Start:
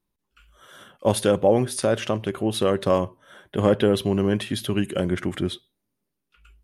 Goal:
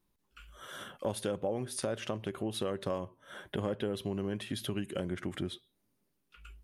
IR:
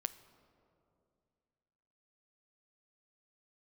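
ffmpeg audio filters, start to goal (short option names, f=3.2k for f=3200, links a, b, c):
-af "acompressor=threshold=-39dB:ratio=3,volume=2dB"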